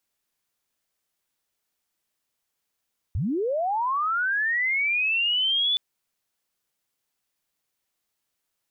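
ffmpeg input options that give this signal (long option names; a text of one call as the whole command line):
ffmpeg -f lavfi -i "aevalsrc='pow(10,(-23+3*t/2.62)/20)*sin(2*PI*(66*t+3434*t*t/(2*2.62)))':duration=2.62:sample_rate=44100" out.wav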